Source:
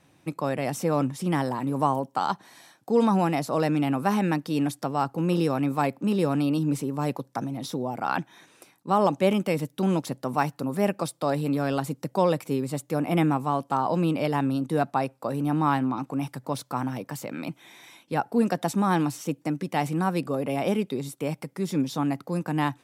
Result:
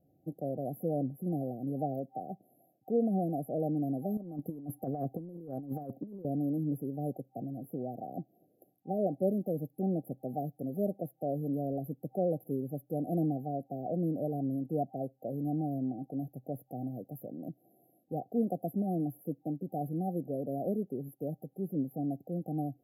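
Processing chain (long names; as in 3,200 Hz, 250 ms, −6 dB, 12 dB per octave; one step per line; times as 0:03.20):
brick-wall band-stop 780–11,000 Hz
0:04.17–0:06.25: compressor whose output falls as the input rises −30 dBFS, ratio −0.5
level −7.5 dB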